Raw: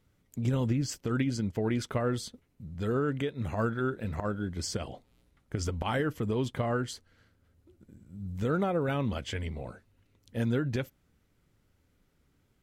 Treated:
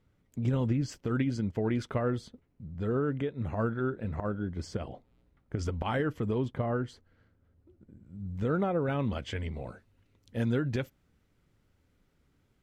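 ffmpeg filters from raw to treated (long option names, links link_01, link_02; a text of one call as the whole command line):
ffmpeg -i in.wav -af "asetnsamples=nb_out_samples=441:pad=0,asendcmd='2.1 lowpass f 1400;5.59 lowpass f 2800;6.38 lowpass f 1100;8.04 lowpass f 2100;8.99 lowpass f 3600;9.54 lowpass f 6300',lowpass=frequency=2600:poles=1" out.wav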